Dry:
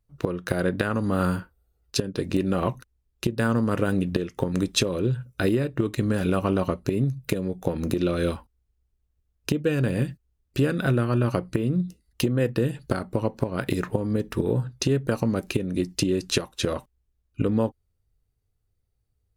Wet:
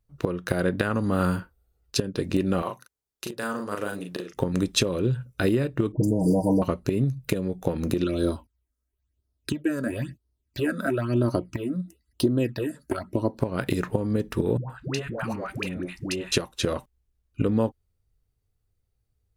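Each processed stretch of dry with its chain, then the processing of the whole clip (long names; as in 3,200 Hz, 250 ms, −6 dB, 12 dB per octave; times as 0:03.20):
0:02.62–0:04.34: high-pass filter 950 Hz 6 dB per octave + parametric band 2,500 Hz −5.5 dB 1.3 octaves + double-tracking delay 39 ms −4 dB
0:05.92–0:06.62: linear-phase brick-wall band-stop 1,000–4,600 Hz + comb filter 6.4 ms, depth 91% + all-pass dispersion highs, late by 101 ms, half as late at 1,600 Hz
0:08.04–0:13.39: high-pass filter 78 Hz + comb filter 3.1 ms, depth 50% + all-pass phaser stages 8, 1 Hz, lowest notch 100–2,600 Hz
0:14.57–0:16.32: flat-topped bell 1,300 Hz +10 dB 2.4 octaves + downward compressor 2.5 to 1, threshold −29 dBFS + all-pass dispersion highs, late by 127 ms, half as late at 580 Hz
whole clip: no processing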